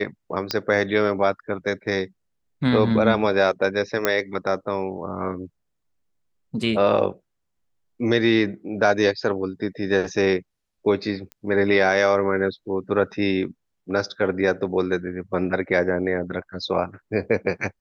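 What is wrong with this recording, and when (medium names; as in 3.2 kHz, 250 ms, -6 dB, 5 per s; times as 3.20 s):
0.51 s: pop -8 dBFS
4.05 s: pop -4 dBFS
11.32 s: pop -21 dBFS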